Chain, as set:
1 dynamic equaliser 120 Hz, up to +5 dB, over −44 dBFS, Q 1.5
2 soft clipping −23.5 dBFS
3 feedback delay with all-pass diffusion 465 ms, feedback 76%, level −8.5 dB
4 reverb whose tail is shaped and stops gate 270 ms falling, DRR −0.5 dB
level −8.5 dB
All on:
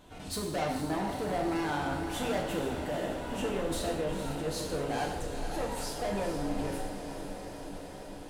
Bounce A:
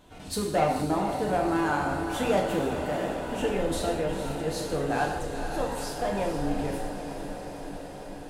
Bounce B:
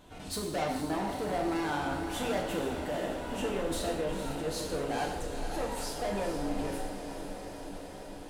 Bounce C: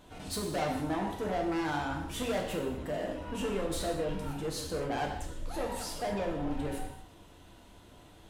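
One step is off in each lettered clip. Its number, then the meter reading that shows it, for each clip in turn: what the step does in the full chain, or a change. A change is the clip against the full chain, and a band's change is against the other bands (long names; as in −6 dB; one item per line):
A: 2, distortion level −9 dB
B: 1, 125 Hz band −2.5 dB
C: 3, echo-to-direct ratio 2.5 dB to 0.5 dB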